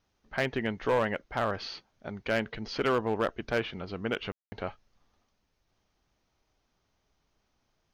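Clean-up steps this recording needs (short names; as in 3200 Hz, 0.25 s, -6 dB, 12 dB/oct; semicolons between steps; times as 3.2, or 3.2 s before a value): clip repair -20 dBFS; room tone fill 4.32–4.52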